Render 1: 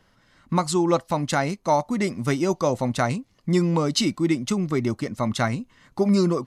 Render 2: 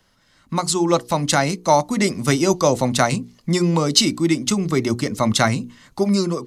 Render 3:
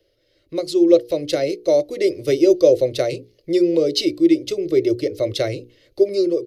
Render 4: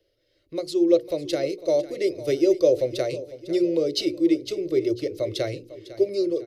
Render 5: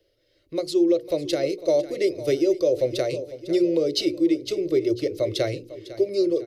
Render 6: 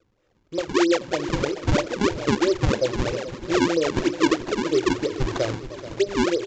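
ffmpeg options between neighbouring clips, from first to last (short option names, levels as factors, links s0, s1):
-filter_complex "[0:a]acrossover=split=300|1300|3300[s0][s1][s2][s3];[s3]acontrast=77[s4];[s0][s1][s2][s4]amix=inputs=4:normalize=0,bandreject=f=60:t=h:w=6,bandreject=f=120:t=h:w=6,bandreject=f=180:t=h:w=6,bandreject=f=240:t=h:w=6,bandreject=f=300:t=h:w=6,bandreject=f=360:t=h:w=6,bandreject=f=420:t=h:w=6,bandreject=f=480:t=h:w=6,dynaudnorm=f=140:g=11:m=3.76,volume=0.891"
-af "firequalizer=gain_entry='entry(110,0);entry(220,-21);entry(320,11);entry(550,13);entry(860,-20);entry(2200,-1);entry(4600,1);entry(7500,-14);entry(12000,-1)':delay=0.05:min_phase=1,volume=0.531"
-af "aecho=1:1:501|1002|1503|2004:0.158|0.0713|0.0321|0.0144,volume=0.531"
-af "alimiter=limit=0.188:level=0:latency=1:release=185,volume=1.33"
-af "acrusher=samples=40:mix=1:aa=0.000001:lfo=1:lforange=64:lforate=3.1,aecho=1:1:432|864|1296|1728:0.2|0.0838|0.0352|0.0148,aresample=16000,aresample=44100"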